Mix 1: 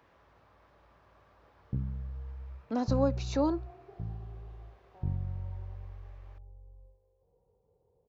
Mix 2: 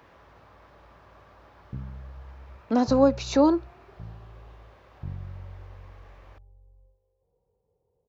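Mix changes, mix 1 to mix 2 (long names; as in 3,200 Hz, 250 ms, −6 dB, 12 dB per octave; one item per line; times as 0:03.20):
speech +9.0 dB
background −3.0 dB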